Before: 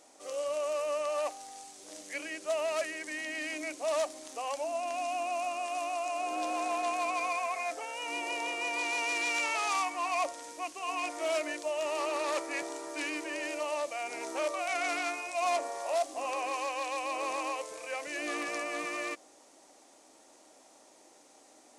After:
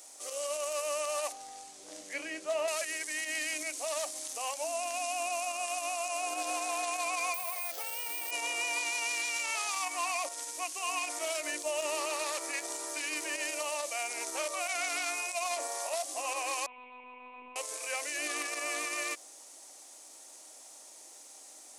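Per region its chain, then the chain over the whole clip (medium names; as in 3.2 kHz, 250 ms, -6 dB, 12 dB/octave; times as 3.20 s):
1.32–2.68 s: RIAA curve playback + doubling 22 ms -11.5 dB
7.34–8.31 s: doubling 15 ms -12 dB + careless resampling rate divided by 4×, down none, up hold
11.52–12.06 s: peaking EQ 140 Hz +8.5 dB 2.7 oct + band-stop 760 Hz
16.66–17.56 s: vowel filter u + monotone LPC vocoder at 8 kHz 250 Hz
whole clip: RIAA curve recording; peak limiter -24 dBFS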